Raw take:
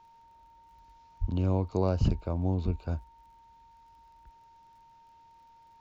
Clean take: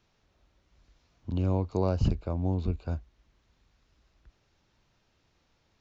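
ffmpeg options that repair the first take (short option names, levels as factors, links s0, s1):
-filter_complex "[0:a]adeclick=t=4,bandreject=f=920:w=30,asplit=3[s0][s1][s2];[s0]afade=t=out:st=1.2:d=0.02[s3];[s1]highpass=f=140:w=0.5412,highpass=f=140:w=1.3066,afade=t=in:st=1.2:d=0.02,afade=t=out:st=1.32:d=0.02[s4];[s2]afade=t=in:st=1.32:d=0.02[s5];[s3][s4][s5]amix=inputs=3:normalize=0"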